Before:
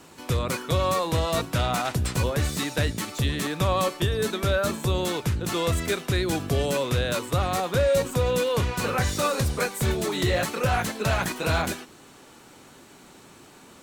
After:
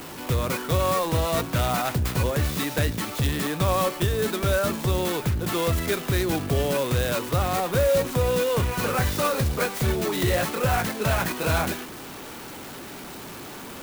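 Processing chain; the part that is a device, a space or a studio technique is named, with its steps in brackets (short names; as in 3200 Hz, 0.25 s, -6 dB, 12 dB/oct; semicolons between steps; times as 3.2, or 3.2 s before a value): early CD player with a faulty converter (zero-crossing step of -34.5 dBFS; clock jitter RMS 0.039 ms)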